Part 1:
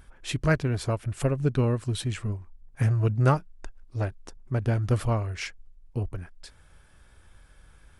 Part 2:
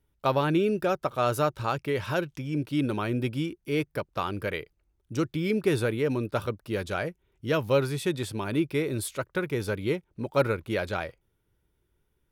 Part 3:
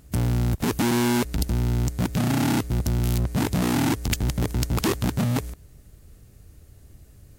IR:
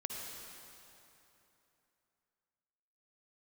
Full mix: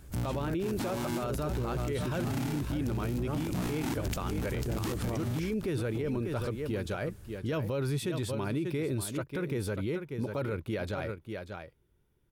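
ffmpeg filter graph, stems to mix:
-filter_complex "[0:a]alimiter=limit=-20.5dB:level=0:latency=1,equalizer=frequency=370:width=1.5:gain=11,volume=-5.5dB[link_01];[1:a]equalizer=frequency=140:width=0.33:gain=5.5,volume=-2dB,asplit=2[link_02][link_03];[link_03]volume=-11.5dB[link_04];[2:a]alimiter=limit=-19.5dB:level=0:latency=1:release=21,volume=-2dB,asplit=2[link_05][link_06];[link_06]volume=-13dB[link_07];[link_04][link_07]amix=inputs=2:normalize=0,aecho=0:1:589:1[link_08];[link_01][link_02][link_05][link_08]amix=inputs=4:normalize=0,alimiter=level_in=1dB:limit=-24dB:level=0:latency=1:release=47,volume=-1dB"

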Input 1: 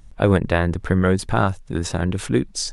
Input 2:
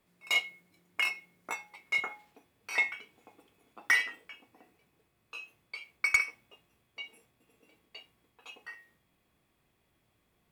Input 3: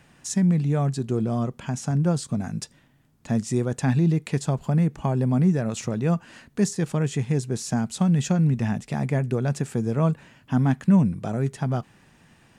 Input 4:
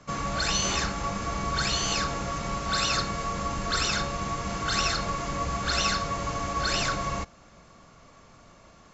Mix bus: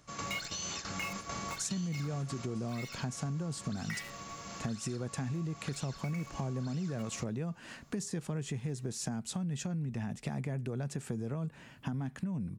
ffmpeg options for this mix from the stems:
ffmpeg -i stem1.wav -i stem2.wav -i stem3.wav -i stem4.wav -filter_complex "[0:a]acompressor=threshold=-28dB:ratio=6,acrossover=split=280[link_01][link_02];[link_02]acompressor=threshold=-43dB:ratio=6[link_03];[link_01][link_03]amix=inputs=2:normalize=0,volume=-9dB,asplit=2[link_04][link_05];[1:a]acrusher=bits=7:dc=4:mix=0:aa=0.000001,volume=-7.5dB[link_06];[2:a]adelay=1350,volume=-1dB[link_07];[3:a]highshelf=frequency=3500:gain=9.5,alimiter=limit=-19.5dB:level=0:latency=1:release=272,volume=-3.5dB[link_08];[link_05]apad=whole_len=393976[link_09];[link_08][link_09]sidechaingate=range=-10dB:threshold=-45dB:ratio=16:detection=peak[link_10];[link_04][link_10]amix=inputs=2:normalize=0,highpass=100,acompressor=threshold=-36dB:ratio=4,volume=0dB[link_11];[link_06][link_07]amix=inputs=2:normalize=0,acrossover=split=410|3000[link_12][link_13][link_14];[link_13]acompressor=threshold=-29dB:ratio=6[link_15];[link_12][link_15][link_14]amix=inputs=3:normalize=0,alimiter=limit=-19.5dB:level=0:latency=1:release=35,volume=0dB[link_16];[link_11][link_16]amix=inputs=2:normalize=0,acompressor=threshold=-33dB:ratio=10" out.wav

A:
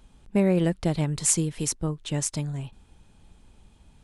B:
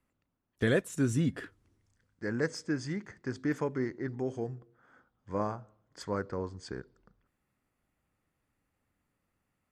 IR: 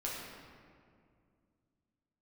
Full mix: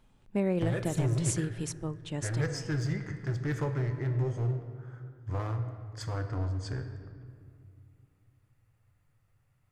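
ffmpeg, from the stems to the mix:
-filter_complex "[0:a]highshelf=frequency=4700:gain=-8,volume=-6.5dB,asplit=2[link_01][link_02];[link_02]volume=-22dB[link_03];[1:a]lowshelf=frequency=160:width_type=q:width=3:gain=13,acompressor=threshold=-27dB:ratio=2.5,asoftclip=type=hard:threshold=-27dB,volume=-0.5dB,asplit=2[link_04][link_05];[link_05]volume=-5dB[link_06];[2:a]atrim=start_sample=2205[link_07];[link_03][link_06]amix=inputs=2:normalize=0[link_08];[link_08][link_07]afir=irnorm=-1:irlink=0[link_09];[link_01][link_04][link_09]amix=inputs=3:normalize=0,equalizer=frequency=61:width_type=o:width=1.4:gain=-11.5"

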